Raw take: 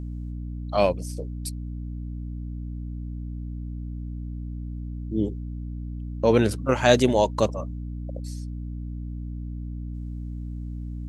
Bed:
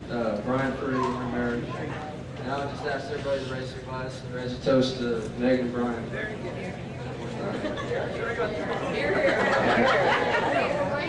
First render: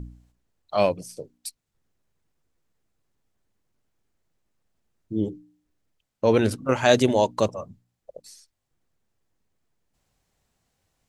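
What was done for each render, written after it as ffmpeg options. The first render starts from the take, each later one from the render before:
-af "bandreject=f=60:t=h:w=4,bandreject=f=120:t=h:w=4,bandreject=f=180:t=h:w=4,bandreject=f=240:t=h:w=4,bandreject=f=300:t=h:w=4"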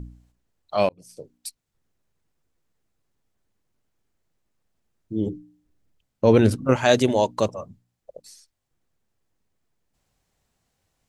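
-filter_complex "[0:a]asettb=1/sr,asplit=3[a][b][c];[a]atrim=end=5.264[d];[b]atrim=start=5.26:end=6.76,asetpts=PTS-STARTPTS,afade=t=in:d=0.004:c=qsin,afade=t=out:st=1.496:d=0.004:c=qsin,lowshelf=f=360:g=7.5[e];[c]atrim=start=6.756[f];[d][e]acrossfade=d=0.004:c1=hsin:c2=qsin[g];[g][f]acrossfade=d=0.004:c1=qsin:c2=hsin,asplit=2[h][i];[h]atrim=end=0.89,asetpts=PTS-STARTPTS,afade=t=out:st=0.886:d=0.004:c=hsin[j];[i]atrim=start=0.89,asetpts=PTS-STARTPTS,afade=t=in:d=0.44[k];[j][k]concat=n=2:v=0:a=1"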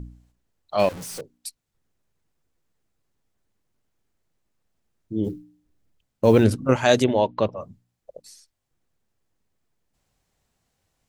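-filter_complex "[0:a]asettb=1/sr,asplit=3[a][b][c];[a]atrim=end=0.794[d];[b]atrim=start=0.79:end=1.21,asetpts=PTS-STARTPTS,afade=t=in:d=0.004:c=qsin,afade=t=out:st=0.416:d=0.004:c=qsin,aeval=exprs='val(0)+0.5*0.0266*sgn(val(0))':c=same[e];[c]atrim=start=1.206[f];[d][e]acrossfade=d=0.004:c1=hsin:c2=qsin[g];[g][f]acrossfade=d=0.004:c1=qsin:c2=hsin,asettb=1/sr,asplit=3[h][i][j];[h]atrim=end=5.244[k];[i]atrim=start=5.24:end=6.44,asetpts=PTS-STARTPTS,afade=t=in:d=0.004:c=qsin,afade=t=out:st=1.196:d=0.004:c=qsin,acrusher=bits=9:mode=log:mix=0:aa=0.000001[l];[j]atrim=start=6.436[m];[k][l]acrossfade=d=0.004:c1=hsin:c2=qsin[n];[n][m]acrossfade=d=0.004:c1=qsin:c2=hsin,asettb=1/sr,asplit=3[o][p][q];[o]atrim=end=7.044[r];[p]atrim=start=7.04:end=7.61,asetpts=PTS-STARTPTS,afade=t=in:d=0.004:c=qsin,afade=t=out:st=0.566:d=0.004:c=qsin,lowpass=f=3.6k:w=0.5412,lowpass=f=3.6k:w=1.3066[s];[q]atrim=start=7.606[t];[r][s]acrossfade=d=0.004:c1=hsin:c2=qsin[u];[u][t]acrossfade=d=0.004:c1=qsin:c2=hsin"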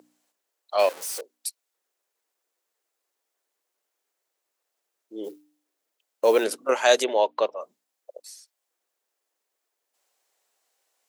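-af "highpass=f=420:w=0.5412,highpass=f=420:w=1.3066,highshelf=f=6.8k:g=6.5"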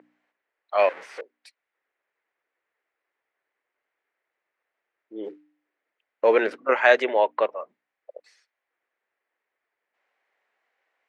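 -af "lowpass=f=2k:t=q:w=2.7"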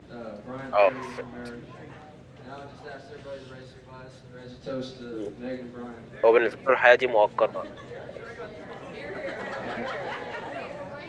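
-filter_complex "[1:a]volume=-11.5dB[a];[0:a][a]amix=inputs=2:normalize=0"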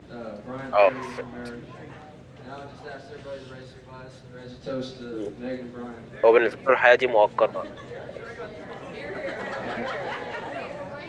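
-af "volume=2dB,alimiter=limit=-3dB:level=0:latency=1"

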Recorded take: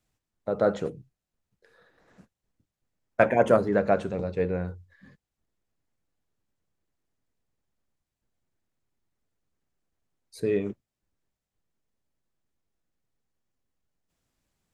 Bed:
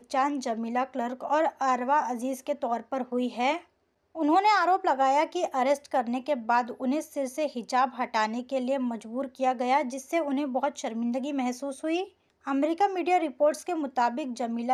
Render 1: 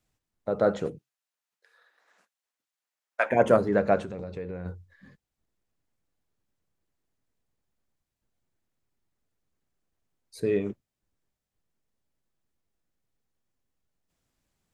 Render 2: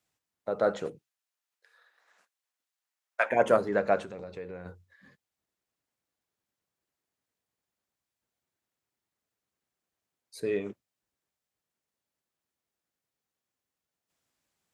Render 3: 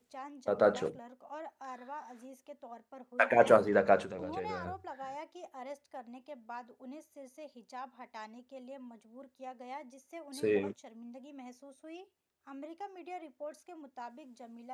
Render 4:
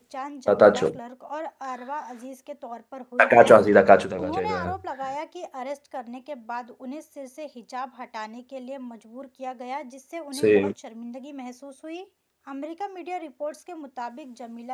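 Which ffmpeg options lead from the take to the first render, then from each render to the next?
-filter_complex "[0:a]asplit=3[a][b][c];[a]afade=t=out:st=0.97:d=0.02[d];[b]highpass=940,afade=t=in:st=0.97:d=0.02,afade=t=out:st=3.3:d=0.02[e];[c]afade=t=in:st=3.3:d=0.02[f];[d][e][f]amix=inputs=3:normalize=0,asettb=1/sr,asplit=3[g][h][i];[g]atrim=end=4.004[j];[h]atrim=start=4:end=4.66,asetpts=PTS-STARTPTS,afade=t=in:d=0.004:c=qsin,afade=t=out:st=0.656:d=0.004:c=qsin,acompressor=threshold=-32dB:ratio=6:attack=3.2:release=140:knee=1:detection=peak[k];[i]atrim=start=4.656[l];[j][k]acrossfade=d=0.004:c1=hsin:c2=qsin[m];[m][l]acrossfade=d=0.004:c1=qsin:c2=hsin"
-af "highpass=64,lowshelf=f=310:g=-11"
-filter_complex "[1:a]volume=-20dB[a];[0:a][a]amix=inputs=2:normalize=0"
-af "volume=11.5dB,alimiter=limit=-1dB:level=0:latency=1"

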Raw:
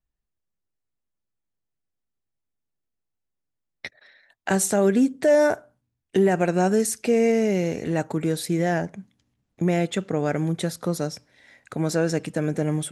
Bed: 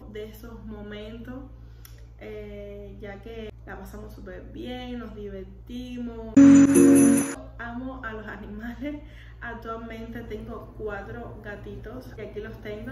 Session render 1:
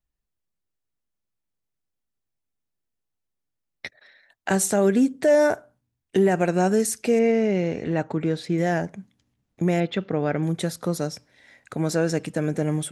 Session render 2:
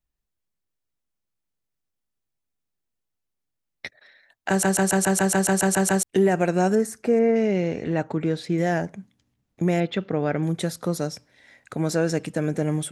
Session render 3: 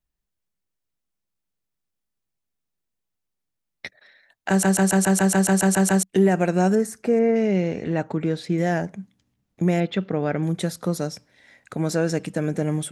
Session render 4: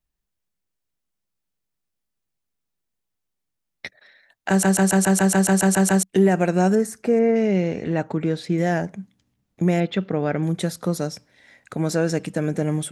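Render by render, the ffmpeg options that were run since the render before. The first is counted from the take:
-filter_complex "[0:a]asettb=1/sr,asplit=3[a][b][c];[a]atrim=end=7.194[d];[b]atrim=start=7.19:end=8.58,asetpts=PTS-STARTPTS,afade=t=in:d=0.004:c=qsin,afade=t=out:st=1.386:d=0.004:c=qsin,lowpass=3.9k[e];[c]atrim=start=8.576[f];[d][e]acrossfade=d=0.004:c1=hsin:c2=qsin[g];[g][f]acrossfade=d=0.004:c1=qsin:c2=hsin,asettb=1/sr,asplit=3[h][i][j];[h]atrim=end=9.804[k];[i]atrim=start=9.8:end=10.43,asetpts=PTS-STARTPTS,afade=t=in:d=0.004:c=qsin,afade=t=out:st=0.626:d=0.004:c=qsin,lowpass=f=4.4k:w=0.5412,lowpass=f=4.4k:w=1.3066[l];[j]atrim=start=10.426[m];[k][l]acrossfade=d=0.004:c1=hsin:c2=qsin[n];[n][m]acrossfade=d=0.004:c1=qsin:c2=hsin"
-filter_complex "[0:a]asettb=1/sr,asplit=3[a][b][c];[a]atrim=end=6.754[d];[b]atrim=start=6.75:end=7.36,asetpts=PTS-STARTPTS,afade=t=in:d=0.004:c=qsin,afade=t=out:st=0.606:d=0.004:c=qsin,highshelf=f=2.1k:t=q:w=1.5:g=-9[e];[c]atrim=start=7.356[f];[d][e]acrossfade=d=0.004:c1=hsin:c2=qsin[g];[g][f]acrossfade=d=0.004:c1=qsin:c2=hsin,asplit=12[h][i][j][k][l][m][n][o][p][q][r][s];[h]atrim=end=4.632[t];[i]atrim=start=4.488:end=4.632[u];[j]atrim=start=4.488:end=4.632[v];[k]atrim=start=4.488:end=4.632[w];[l]atrim=start=4.488:end=4.632[x];[m]atrim=start=4.488:end=4.632[y];[n]atrim=start=4.488:end=4.632[z];[o]atrim=start=4.488:end=4.632[aa];[p]atrim=start=4.488:end=4.632[ab];[q]atrim=start=4.488:end=4.632[ac];[r]atrim=start=4.488:end=4.632[ad];[s]atrim=start=6.028[ae];[t][u]acrossfade=d=0.004:c1=hsin:c2=hsin[af];[af][v]acrossfade=d=0.004:c1=hsin:c2=hsin[ag];[ag][w]acrossfade=d=0.004:c1=hsin:c2=hsin[ah];[ah][x]acrossfade=d=0.004:c1=hsin:c2=hsin[ai];[ai][y]acrossfade=d=0.004:c1=hsin:c2=hsin[aj];[aj][z]acrossfade=d=0.004:c1=hsin:c2=hsin[ak];[ak][aa]acrossfade=d=0.004:c1=hsin:c2=hsin[al];[al][ab]acrossfade=d=0.004:c1=hsin:c2=hsin[am];[am][ac]acrossfade=d=0.004:c1=hsin:c2=hsin[an];[an][ad]acrossfade=d=0.004:c1=hsin:c2=hsin[ao];[ao][ae]acrossfade=d=0.004:c1=hsin:c2=hsin"
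-af "equalizer=f=190:t=o:w=0.22:g=4.5"
-af "volume=1dB"

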